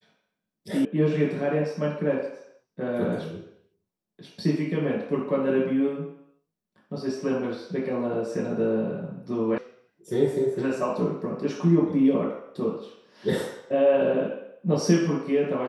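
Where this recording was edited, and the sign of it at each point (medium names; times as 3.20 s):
0.85 s: sound stops dead
9.58 s: sound stops dead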